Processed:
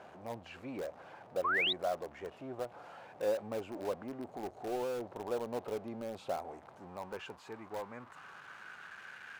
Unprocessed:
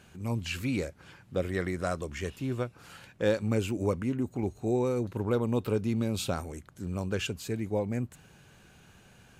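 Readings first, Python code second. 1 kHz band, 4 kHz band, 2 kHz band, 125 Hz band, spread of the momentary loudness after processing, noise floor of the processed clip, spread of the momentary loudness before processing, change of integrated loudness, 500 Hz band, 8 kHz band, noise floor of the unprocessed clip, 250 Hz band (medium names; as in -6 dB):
0.0 dB, +0.5 dB, 0.0 dB, -21.5 dB, 16 LU, -56 dBFS, 8 LU, -7.0 dB, -6.0 dB, -13.5 dB, -58 dBFS, -14.0 dB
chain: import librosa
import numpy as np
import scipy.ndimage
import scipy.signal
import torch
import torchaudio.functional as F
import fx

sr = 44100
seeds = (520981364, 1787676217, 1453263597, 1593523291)

p1 = x + 0.5 * 10.0 ** (-38.5 / 20.0) * np.sign(x)
p2 = fx.filter_sweep_bandpass(p1, sr, from_hz=700.0, to_hz=1600.0, start_s=6.3, end_s=9.21, q=2.8)
p3 = (np.mod(10.0 ** (35.0 / 20.0) * p2 + 1.0, 2.0) - 1.0) / 10.0 ** (35.0 / 20.0)
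p4 = p2 + (p3 * librosa.db_to_amplitude(-11.0))
y = fx.spec_paint(p4, sr, seeds[0], shape='rise', start_s=1.44, length_s=0.29, low_hz=1000.0, high_hz=4000.0, level_db=-31.0)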